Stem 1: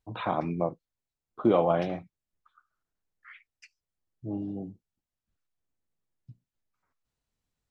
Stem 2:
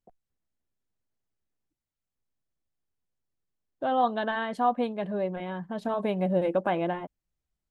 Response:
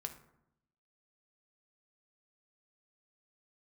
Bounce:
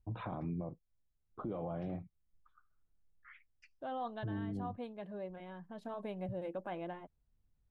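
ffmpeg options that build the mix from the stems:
-filter_complex "[0:a]aemphasis=mode=reproduction:type=riaa,acompressor=threshold=-36dB:ratio=2,volume=-5.5dB,asplit=2[link_01][link_02];[1:a]volume=-14dB[link_03];[link_02]apad=whole_len=339880[link_04];[link_03][link_04]sidechaincompress=threshold=-41dB:ratio=8:attack=16:release=537[link_05];[link_01][link_05]amix=inputs=2:normalize=0,alimiter=level_in=7.5dB:limit=-24dB:level=0:latency=1:release=12,volume=-7.5dB"

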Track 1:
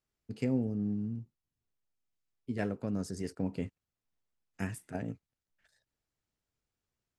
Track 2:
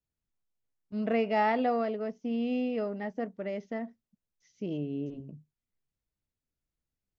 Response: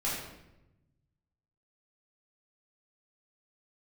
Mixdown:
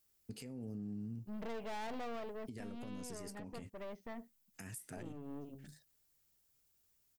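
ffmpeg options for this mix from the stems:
-filter_complex "[0:a]aemphasis=mode=production:type=75fm,alimiter=level_in=4.5dB:limit=-24dB:level=0:latency=1:release=36,volume=-4.5dB,acompressor=threshold=-43dB:ratio=5,volume=2dB[link_01];[1:a]aeval=exprs='(tanh(63.1*val(0)+0.7)-tanh(0.7))/63.1':channel_layout=same,adelay=350,volume=-5.5dB[link_02];[link_01][link_02]amix=inputs=2:normalize=0,alimiter=level_in=12dB:limit=-24dB:level=0:latency=1:release=239,volume=-12dB"

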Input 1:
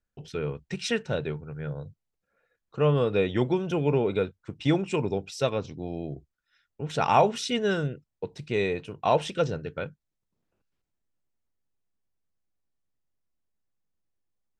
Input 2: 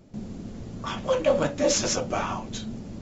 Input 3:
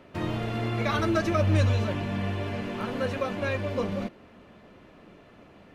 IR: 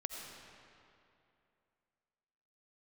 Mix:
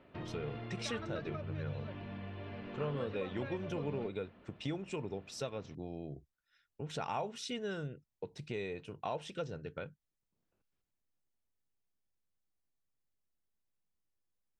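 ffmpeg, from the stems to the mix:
-filter_complex "[0:a]acompressor=threshold=-35dB:ratio=2.5,volume=-5dB[link_01];[2:a]volume=-9.5dB,lowpass=frequency=4100:width=0.5412,lowpass=frequency=4100:width=1.3066,acompressor=threshold=-42dB:ratio=4,volume=0dB[link_02];[link_01][link_02]amix=inputs=2:normalize=0"

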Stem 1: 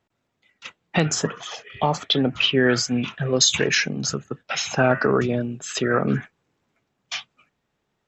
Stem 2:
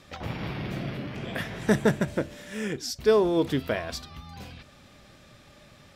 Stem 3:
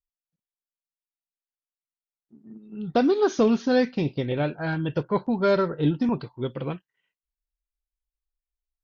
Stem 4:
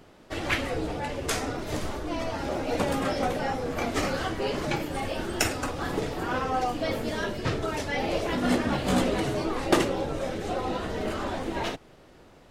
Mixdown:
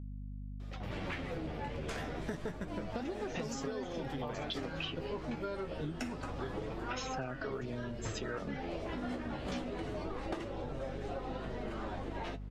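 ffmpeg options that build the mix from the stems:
ffmpeg -i stem1.wav -i stem2.wav -i stem3.wav -i stem4.wav -filter_complex "[0:a]adelay=2400,volume=-7dB,asplit=3[link_01][link_02][link_03];[link_01]atrim=end=4.95,asetpts=PTS-STARTPTS,afade=type=out:start_time=4.946:duration=0.004:curve=hsin[link_04];[link_02]atrim=start=4.95:end=6.82,asetpts=PTS-STARTPTS,volume=0[link_05];[link_03]atrim=start=6.82,asetpts=PTS-STARTPTS,afade=type=in:duration=0.004:curve=hsin[link_06];[link_04][link_05][link_06]concat=n=3:v=0:a=1[link_07];[1:a]highshelf=frequency=8500:gain=-6,adelay=600,volume=-4.5dB[link_08];[2:a]volume=-6dB[link_09];[3:a]aemphasis=mode=reproduction:type=50fm,adelay=600,volume=-4dB[link_10];[link_07][link_08][link_09][link_10]amix=inputs=4:normalize=0,flanger=delay=7.3:depth=5.7:regen=39:speed=0.27:shape=sinusoidal,aeval=exprs='val(0)+0.00794*(sin(2*PI*50*n/s)+sin(2*PI*2*50*n/s)/2+sin(2*PI*3*50*n/s)/3+sin(2*PI*4*50*n/s)/4+sin(2*PI*5*50*n/s)/5)':channel_layout=same,acompressor=threshold=-35dB:ratio=12" out.wav

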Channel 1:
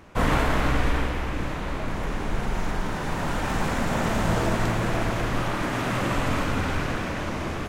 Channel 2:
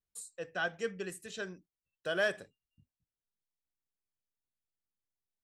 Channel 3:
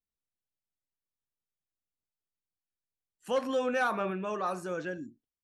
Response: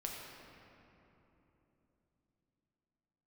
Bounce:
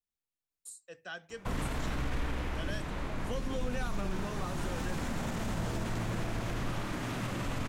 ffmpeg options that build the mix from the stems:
-filter_complex "[0:a]alimiter=limit=-17.5dB:level=0:latency=1:release=25,adelay=1300,volume=-6.5dB[link_01];[1:a]highshelf=frequency=2700:gain=7.5,adelay=500,volume=-8.5dB[link_02];[2:a]volume=-3dB[link_03];[link_01][link_02][link_03]amix=inputs=3:normalize=0,acrossover=split=300|3000[link_04][link_05][link_06];[link_05]acompressor=threshold=-39dB:ratio=6[link_07];[link_04][link_07][link_06]amix=inputs=3:normalize=0"

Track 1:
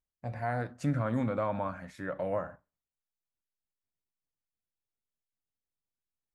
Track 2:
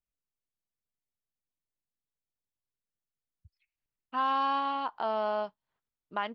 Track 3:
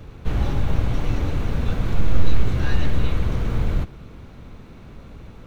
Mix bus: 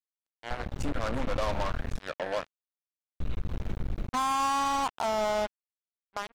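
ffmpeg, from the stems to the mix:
ffmpeg -i stem1.wav -i stem2.wav -i stem3.wav -filter_complex "[0:a]highpass=360,volume=-6dB[link_01];[1:a]highshelf=frequency=2600:gain=-11,volume=1.5dB[link_02];[2:a]acompressor=threshold=-22dB:ratio=8,adelay=250,volume=-18.5dB,asplit=3[link_03][link_04][link_05];[link_03]atrim=end=2.02,asetpts=PTS-STARTPTS,afade=type=out:start_time=2.016:duration=0.004:curve=hsin[link_06];[link_04]atrim=start=2.02:end=3.2,asetpts=PTS-STARTPTS,volume=0[link_07];[link_05]atrim=start=3.2,asetpts=PTS-STARTPTS,afade=type=in:duration=0.004:curve=hsin[link_08];[link_06][link_07][link_08]concat=n=3:v=0:a=1[link_09];[link_02][link_09]amix=inputs=2:normalize=0,lowshelf=frequency=63:gain=7.5,alimiter=level_in=3dB:limit=-24dB:level=0:latency=1:release=92,volume=-3dB,volume=0dB[link_10];[link_01][link_10]amix=inputs=2:normalize=0,dynaudnorm=framelen=430:gausssize=3:maxgain=7dB,acrusher=bits=4:mix=0:aa=0.5" out.wav

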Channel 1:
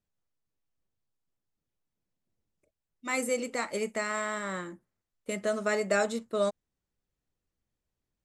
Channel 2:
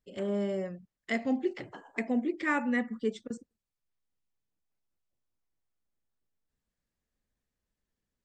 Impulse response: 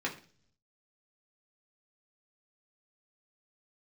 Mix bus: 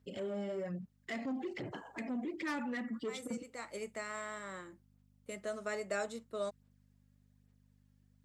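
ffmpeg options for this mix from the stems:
-filter_complex "[0:a]highpass=200,aeval=exprs='val(0)+0.00224*(sin(2*PI*50*n/s)+sin(2*PI*2*50*n/s)/2+sin(2*PI*3*50*n/s)/3+sin(2*PI*4*50*n/s)/4+sin(2*PI*5*50*n/s)/5)':channel_layout=same,volume=-10dB[link_01];[1:a]aphaser=in_gain=1:out_gain=1:delay=3.7:decay=0.51:speed=1.2:type=sinusoidal,asoftclip=type=tanh:threshold=-25.5dB,alimiter=level_in=12dB:limit=-24dB:level=0:latency=1:release=58,volume=-12dB,volume=2.5dB,asplit=2[link_02][link_03];[link_03]apad=whole_len=363624[link_04];[link_01][link_04]sidechaincompress=threshold=-47dB:ratio=3:attack=5.7:release=472[link_05];[link_05][link_02]amix=inputs=2:normalize=0,highpass=76"

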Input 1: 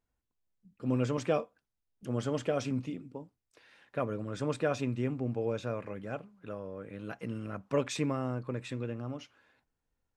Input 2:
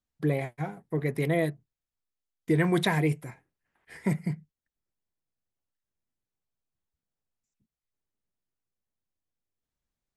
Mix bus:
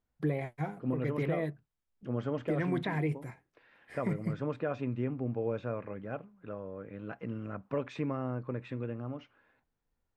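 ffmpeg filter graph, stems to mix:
ffmpeg -i stem1.wav -i stem2.wav -filter_complex "[0:a]lowpass=2200,volume=-0.5dB[link_01];[1:a]highshelf=frequency=4800:gain=-5.5,acrossover=split=3500[link_02][link_03];[link_03]acompressor=threshold=-58dB:ratio=4:attack=1:release=60[link_04];[link_02][link_04]amix=inputs=2:normalize=0,volume=-2dB[link_05];[link_01][link_05]amix=inputs=2:normalize=0,alimiter=limit=-22dB:level=0:latency=1:release=264" out.wav

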